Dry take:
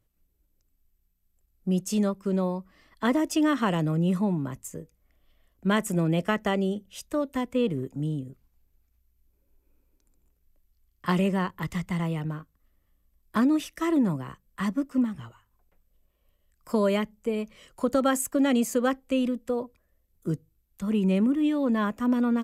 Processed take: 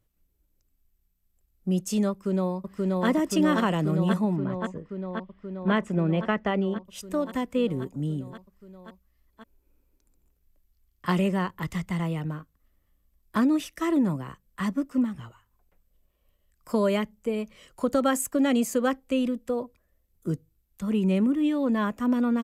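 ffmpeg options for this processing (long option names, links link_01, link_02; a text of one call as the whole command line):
ffmpeg -i in.wav -filter_complex "[0:a]asplit=2[link_01][link_02];[link_02]afade=type=in:start_time=2.11:duration=0.01,afade=type=out:start_time=3.07:duration=0.01,aecho=0:1:530|1060|1590|2120|2650|3180|3710|4240|4770|5300|5830|6360:0.944061|0.755249|0.604199|0.483359|0.386687|0.30935|0.24748|0.197984|0.158387|0.12671|0.101368|0.0810942[link_03];[link_01][link_03]amix=inputs=2:normalize=0,asettb=1/sr,asplit=3[link_04][link_05][link_06];[link_04]atrim=end=4.364[link_07];[link_05]atrim=start=4.36:end=6.85,asetpts=PTS-STARTPTS,afade=type=in:duration=0.004:curve=qsin,afade=type=out:start_time=2.486:duration=0.004:curve=qsin,lowpass=3000[link_08];[link_06]atrim=start=6.846[link_09];[link_07][link_08]acrossfade=duration=0.004:curve1=hsin:curve2=qsin[link_10];[link_10][link_09]acrossfade=duration=0.004:curve1=qsin:curve2=hsin" out.wav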